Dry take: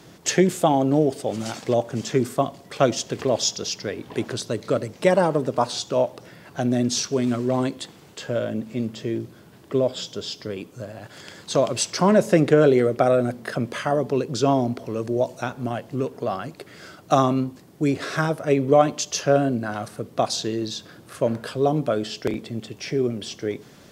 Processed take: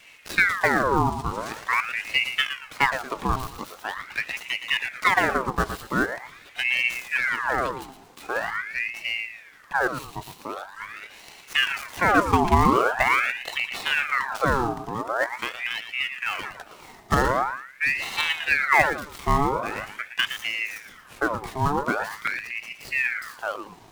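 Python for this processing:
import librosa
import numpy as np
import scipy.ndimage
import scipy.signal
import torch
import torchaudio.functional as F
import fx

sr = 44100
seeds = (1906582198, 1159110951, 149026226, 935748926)

y = fx.dead_time(x, sr, dead_ms=0.09)
y = fx.echo_feedback(y, sr, ms=115, feedback_pct=31, wet_db=-9.5)
y = fx.ring_lfo(y, sr, carrier_hz=1500.0, swing_pct=65, hz=0.44)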